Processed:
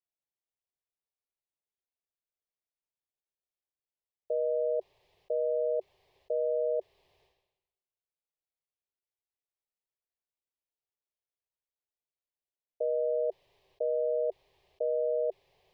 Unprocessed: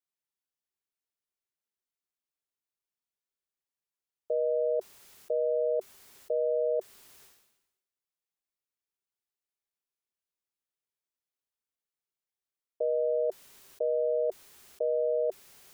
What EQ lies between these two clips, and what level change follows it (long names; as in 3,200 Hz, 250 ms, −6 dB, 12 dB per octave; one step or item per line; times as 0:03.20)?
high-frequency loss of the air 370 metres
phaser with its sweep stopped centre 580 Hz, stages 4
0.0 dB